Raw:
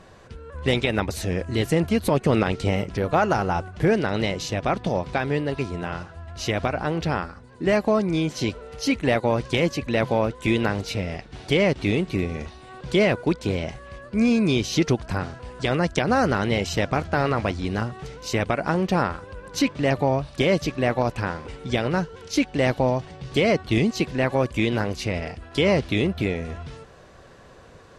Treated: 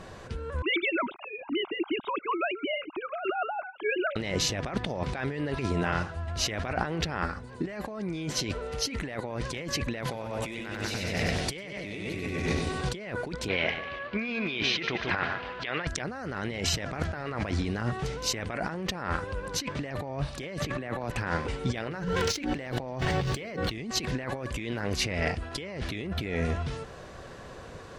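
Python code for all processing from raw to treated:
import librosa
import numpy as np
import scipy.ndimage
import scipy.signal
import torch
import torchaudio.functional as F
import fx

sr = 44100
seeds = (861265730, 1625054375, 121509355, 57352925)

y = fx.chain(x, sr, fx.sine_speech(),
    fx.air_absorb(metres=200.0),
    fx.fixed_phaser(hz=1800.0, stages=6), at=(0.62, 4.16))
y = fx.chain(y, sr, fx.high_shelf(hz=3100.0, db=9.0),
    fx.echo_split(split_hz=690.0, low_ms=125, high_ms=96, feedback_pct=52, wet_db=-3.0), at=(10.02, 12.89))
y = fx.chain(y, sr, fx.lowpass(hz=3200.0, slope=24),
    fx.tilt_eq(slope=4.0),
    fx.echo_feedback(ms=146, feedback_pct=41, wet_db=-12.5), at=(13.48, 15.87))
y = fx.chain(y, sr, fx.peak_eq(hz=5300.0, db=-7.5, octaves=0.42),
    fx.band_squash(depth_pct=70), at=(20.6, 21.12))
y = fx.chain(y, sr, fx.median_filter(points=3),
    fx.hum_notches(base_hz=60, count=9),
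    fx.env_flatten(amount_pct=50), at=(21.8, 23.72))
y = fx.dynamic_eq(y, sr, hz=1800.0, q=2.0, threshold_db=-42.0, ratio=4.0, max_db=6)
y = fx.over_compress(y, sr, threshold_db=-30.0, ratio=-1.0)
y = y * 10.0 ** (-2.0 / 20.0)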